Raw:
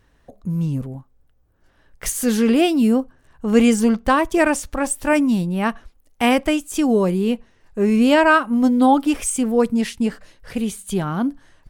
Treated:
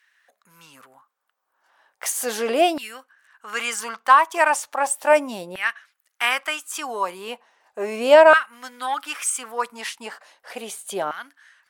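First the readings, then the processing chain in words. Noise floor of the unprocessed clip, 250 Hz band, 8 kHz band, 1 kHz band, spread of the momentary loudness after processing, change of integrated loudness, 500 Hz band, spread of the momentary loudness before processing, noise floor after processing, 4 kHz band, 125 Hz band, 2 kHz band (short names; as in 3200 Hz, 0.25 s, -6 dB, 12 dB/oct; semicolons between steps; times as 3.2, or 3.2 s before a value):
-59 dBFS, -18.0 dB, -0.5 dB, +1.5 dB, 20 LU, -2.0 dB, 0.0 dB, 12 LU, -76 dBFS, 0.0 dB, under -25 dB, +1.5 dB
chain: added harmonics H 5 -35 dB, 6 -43 dB, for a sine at -1.5 dBFS; LFO high-pass saw down 0.36 Hz 560–1900 Hz; gain -1.5 dB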